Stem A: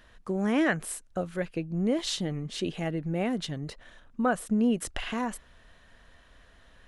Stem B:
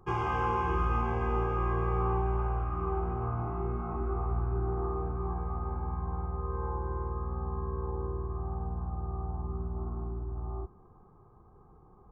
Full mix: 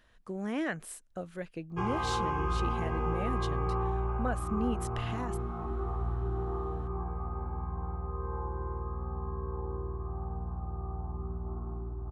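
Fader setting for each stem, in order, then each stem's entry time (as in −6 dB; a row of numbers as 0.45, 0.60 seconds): −8.0, −2.0 decibels; 0.00, 1.70 seconds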